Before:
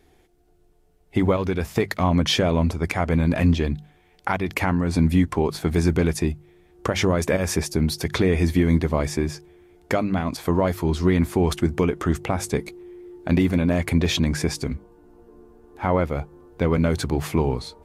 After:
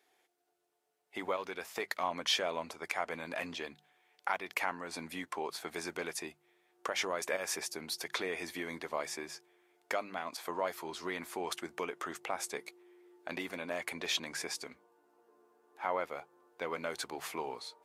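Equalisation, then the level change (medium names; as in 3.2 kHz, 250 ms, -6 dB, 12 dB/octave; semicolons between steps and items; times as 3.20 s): high-pass 670 Hz 12 dB/octave; -8.0 dB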